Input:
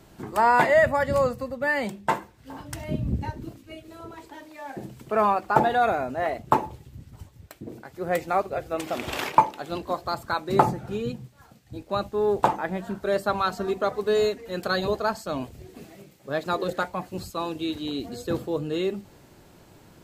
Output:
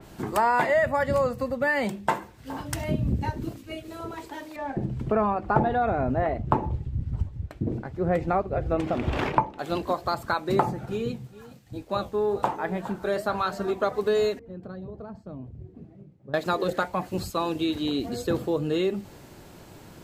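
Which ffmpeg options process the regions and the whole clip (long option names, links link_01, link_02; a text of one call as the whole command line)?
ffmpeg -i in.wav -filter_complex "[0:a]asettb=1/sr,asplit=3[link_01][link_02][link_03];[link_01]atrim=end=4.564[link_04];[link_02]atrim=start=4.56:end=9.59,asetpts=PTS-STARTPTS,afade=type=in:duration=0.004:curve=qsin,afade=type=out:start_time=5.026:duration=0.004:curve=qsin,aemphasis=mode=reproduction:type=riaa,tremolo=f=1.9:d=0.36[link_05];[link_03]atrim=start=9.586[link_06];[link_04][link_05]acrossfade=duration=0.004:curve1=hsin:curve2=qsin[link_07];[link_07][link_06]acrossfade=duration=0.004:curve1=qsin:curve2=hsin,asettb=1/sr,asplit=3[link_08][link_09][link_10];[link_08]atrim=end=10.854[link_11];[link_09]atrim=start=10.85:end=13.83,asetpts=PTS-STARTPTS,afade=type=in:duration=0.004:curve=qsin,afade=type=out:start_time=2.976:duration=0.004:curve=qsin,aecho=1:1:412:0.119,atrim=end_sample=131418,flanger=delay=6.3:depth=8.1:regen=-69:speed=1.1:shape=sinusoidal[link_12];[link_10]atrim=start=13.826[link_13];[link_11][link_12]acrossfade=duration=0.004:curve1=hsin:curve2=qsin[link_14];[link_14][link_13]acrossfade=duration=0.004:curve1=qsin:curve2=hsin,asettb=1/sr,asplit=3[link_15][link_16][link_17];[link_15]atrim=end=14.394[link_18];[link_16]atrim=start=14.39:end=16.34,asetpts=PTS-STARTPTS,afade=type=in:duration=0.004:curve=qsin,afade=type=out:start_time=1.946:duration=0.004:curve=qsin,bandpass=frequency=110:width_type=q:width=0.97,acompressor=threshold=-39dB:ratio=12:attack=3.2:release=140:knee=1:detection=peak[link_19];[link_17]atrim=start=16.336[link_20];[link_18][link_19]acrossfade=duration=0.004:curve1=hsin:curve2=qsin[link_21];[link_21][link_20]acrossfade=duration=0.004:curve1=qsin:curve2=hsin,acompressor=threshold=-28dB:ratio=2.5,adynamicequalizer=threshold=0.00447:dfrequency=3300:dqfactor=0.7:tfrequency=3300:tqfactor=0.7:attack=5:release=100:ratio=0.375:range=1.5:mode=cutabove:tftype=highshelf,volume=5dB" out.wav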